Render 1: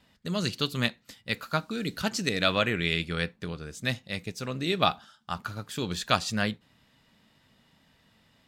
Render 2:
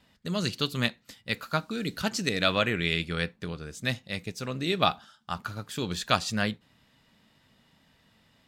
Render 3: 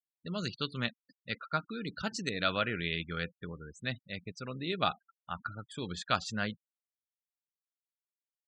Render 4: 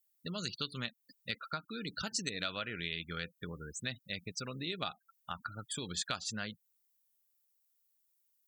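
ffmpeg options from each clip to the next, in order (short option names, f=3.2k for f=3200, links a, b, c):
-af anull
-af "afftfilt=real='re*gte(hypot(re,im),0.0158)':imag='im*gte(hypot(re,im),0.0158)':win_size=1024:overlap=0.75,equalizer=f=1.4k:w=5.9:g=6,volume=-7dB"
-af "acompressor=threshold=-40dB:ratio=4,aemphasis=mode=production:type=75fm,volume=2dB"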